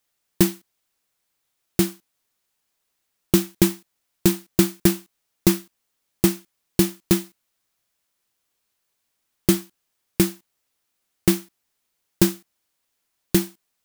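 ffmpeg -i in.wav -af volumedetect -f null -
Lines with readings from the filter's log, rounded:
mean_volume: -26.1 dB
max_volume: -1.8 dB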